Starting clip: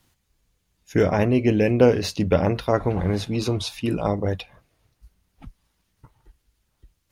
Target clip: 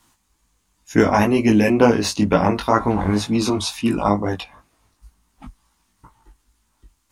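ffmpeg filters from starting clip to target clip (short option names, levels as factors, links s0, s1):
-filter_complex "[0:a]equalizer=f=125:t=o:w=1:g=-7,equalizer=f=250:t=o:w=1:g=7,equalizer=f=500:t=o:w=1:g=-6,equalizer=f=1000:t=o:w=1:g=10,equalizer=f=8000:t=o:w=1:g=8,flanger=delay=17.5:depth=2.8:speed=2.1,asettb=1/sr,asplit=3[s0][s1][s2];[s0]atrim=end=1.144[s3];[s1]atrim=start=1.14:end=1.7,asetpts=PTS-STARTPTS,afade=t=in:d=0.004:c=qsin,afade=t=out:st=0.556:d=0.004:c=qsin,highshelf=f=7300:g=12[s4];[s2]atrim=start=1.696[s5];[s3][s4]acrossfade=d=0.004:c1=hsin:c2=qsin[s6];[s6][s5]acrossfade=d=0.004:c1=qsin:c2=hsin,volume=1.88"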